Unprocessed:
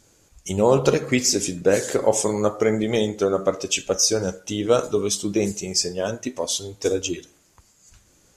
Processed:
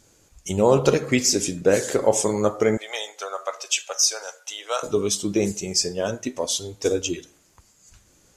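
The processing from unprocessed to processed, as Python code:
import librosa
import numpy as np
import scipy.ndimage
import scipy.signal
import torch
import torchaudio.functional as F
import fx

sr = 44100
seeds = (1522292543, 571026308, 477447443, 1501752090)

y = fx.highpass(x, sr, hz=720.0, slope=24, at=(2.77, 4.83))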